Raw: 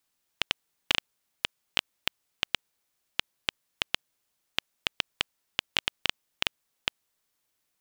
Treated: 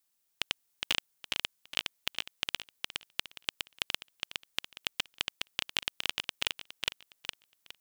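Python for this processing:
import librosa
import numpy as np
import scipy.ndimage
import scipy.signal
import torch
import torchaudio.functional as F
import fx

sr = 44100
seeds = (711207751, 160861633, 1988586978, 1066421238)

y = fx.high_shelf(x, sr, hz=5500.0, db=9.5)
y = fx.echo_feedback(y, sr, ms=413, feedback_pct=28, wet_db=-3.5)
y = y * 10.0 ** (-6.5 / 20.0)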